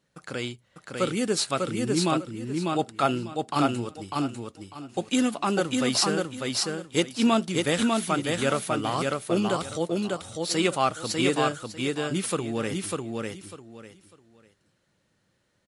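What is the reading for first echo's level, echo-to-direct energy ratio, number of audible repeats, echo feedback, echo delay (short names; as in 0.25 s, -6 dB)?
-3.0 dB, -3.0 dB, 3, 23%, 0.598 s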